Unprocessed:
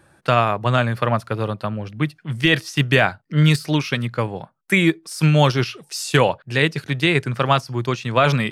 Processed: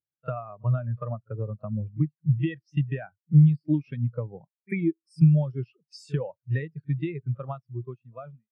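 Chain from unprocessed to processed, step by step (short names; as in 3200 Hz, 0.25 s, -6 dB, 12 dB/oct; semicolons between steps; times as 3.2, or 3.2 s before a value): ending faded out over 1.68 s; pre-echo 49 ms -21 dB; compressor 12:1, threshold -23 dBFS, peak gain reduction 14 dB; spectral expander 2.5:1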